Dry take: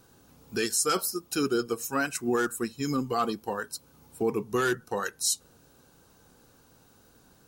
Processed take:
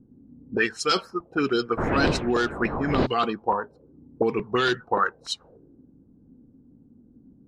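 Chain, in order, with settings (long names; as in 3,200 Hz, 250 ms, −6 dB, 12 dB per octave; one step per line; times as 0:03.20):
0:01.77–0:03.05: wind on the microphone 460 Hz −25 dBFS
regular buffer underruns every 0.29 s, samples 128, repeat, from 0:00.91
envelope-controlled low-pass 240–4,200 Hz up, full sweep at −21.5 dBFS
level +2.5 dB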